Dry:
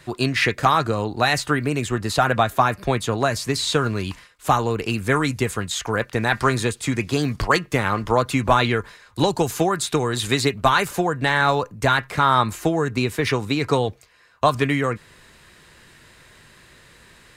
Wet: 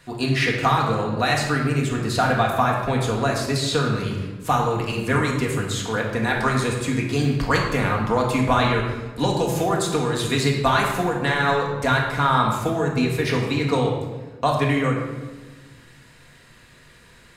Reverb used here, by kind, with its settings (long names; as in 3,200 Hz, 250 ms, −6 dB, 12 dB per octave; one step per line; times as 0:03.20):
rectangular room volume 960 cubic metres, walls mixed, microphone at 1.8 metres
level −4.5 dB